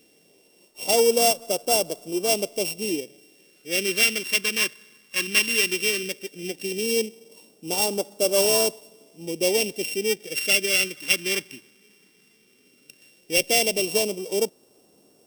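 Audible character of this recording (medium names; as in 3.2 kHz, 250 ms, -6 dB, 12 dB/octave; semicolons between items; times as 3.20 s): a buzz of ramps at a fixed pitch in blocks of 16 samples; phasing stages 2, 0.15 Hz, lowest notch 630–1900 Hz; a quantiser's noise floor 12-bit, dither none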